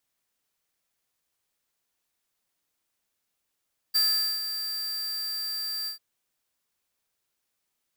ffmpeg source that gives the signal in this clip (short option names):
-f lavfi -i "aevalsrc='0.0794*(2*lt(mod(4710*t,1),0.5)-1)':d=2.043:s=44100,afade=t=in:d=0.018,afade=t=out:st=0.018:d=0.437:silence=0.316,afade=t=out:st=1.93:d=0.113"